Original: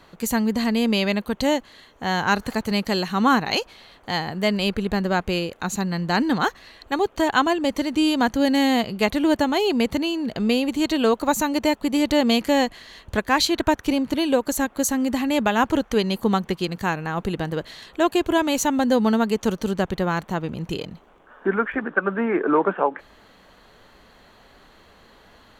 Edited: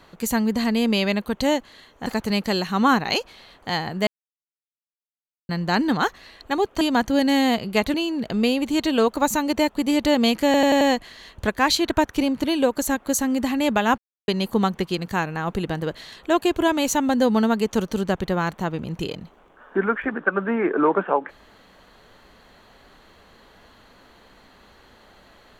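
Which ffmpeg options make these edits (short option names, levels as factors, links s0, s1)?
-filter_complex "[0:a]asplit=12[s0][s1][s2][s3][s4][s5][s6][s7][s8][s9][s10][s11];[s0]atrim=end=2.062[s12];[s1]atrim=start=2.468:end=4.48,asetpts=PTS-STARTPTS,afade=t=out:st=2.008:d=0.004:c=hsin[s13];[s2]atrim=start=4.48:end=5.9,asetpts=PTS-STARTPTS,volume=0[s14];[s3]atrim=start=5.9:end=7.222,asetpts=PTS-STARTPTS,afade=t=in:d=0.004:c=hsin[s15];[s4]atrim=start=8.068:end=9.202[s16];[s5]atrim=start=9.998:end=12.602[s17];[s6]atrim=start=12.508:end=12.602[s18];[s7]atrim=start=12.508:end=12.602[s19];[s8]atrim=start=12.508:end=12.602[s20];[s9]atrim=start=12.508:end=15.68,asetpts=PTS-STARTPTS,afade=t=out:st=3.168:d=0.004:c=hsin[s21];[s10]atrim=start=15.68:end=15.98,asetpts=PTS-STARTPTS,volume=0[s22];[s11]atrim=start=15.98,asetpts=PTS-STARTPTS,afade=t=in:d=0.004:c=hsin[s23];[s13][s14][s15]concat=n=3:v=0:a=1[s24];[s12][s24]acrossfade=d=0.004:c1=hsin:c2=hsin[s25];[s25][s16]acrossfade=d=0.004:c1=hsin:c2=hsin[s26];[s26][s17]acrossfade=d=0.004:c1=hsin:c2=hsin[s27];[s27][s18]acrossfade=d=0.004:c1=hsin:c2=hsin[s28];[s28][s19]acrossfade=d=0.004:c1=hsin:c2=hsin[s29];[s29][s20]acrossfade=d=0.004:c1=hsin:c2=hsin[s30];[s21][s22][s23]concat=n=3:v=0:a=1[s31];[s30][s31]acrossfade=d=0.004:c1=hsin:c2=hsin"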